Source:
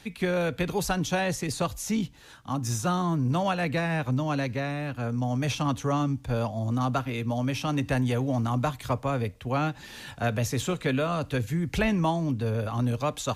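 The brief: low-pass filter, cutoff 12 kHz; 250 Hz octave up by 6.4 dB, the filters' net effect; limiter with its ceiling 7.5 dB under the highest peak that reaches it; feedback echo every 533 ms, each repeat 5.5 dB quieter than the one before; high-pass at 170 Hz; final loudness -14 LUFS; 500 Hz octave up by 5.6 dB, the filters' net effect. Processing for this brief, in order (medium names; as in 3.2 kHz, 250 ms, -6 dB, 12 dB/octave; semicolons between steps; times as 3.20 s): high-pass 170 Hz; low-pass 12 kHz; peaking EQ 250 Hz +8 dB; peaking EQ 500 Hz +5 dB; peak limiter -16.5 dBFS; feedback delay 533 ms, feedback 53%, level -5.5 dB; trim +10.5 dB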